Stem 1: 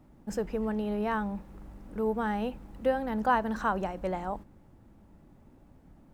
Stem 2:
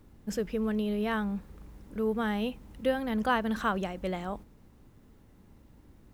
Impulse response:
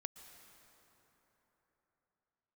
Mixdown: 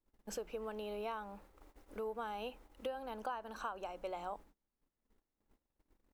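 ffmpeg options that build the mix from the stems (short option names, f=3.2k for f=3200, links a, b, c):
-filter_complex "[0:a]volume=-9dB,asplit=2[a][b];[1:a]bandreject=f=60:t=h:w=6,bandreject=f=120:t=h:w=6,bandreject=f=180:t=h:w=6,volume=-1,adelay=0.5,volume=-2.5dB[c];[b]apad=whole_len=270505[d];[c][d]sidechaincompress=threshold=-41dB:ratio=20:attack=16:release=1070[e];[a][e]amix=inputs=2:normalize=0,agate=range=-26dB:threshold=-54dB:ratio=16:detection=peak,equalizer=f=120:w=0.63:g=-13.5,acompressor=threshold=-37dB:ratio=6"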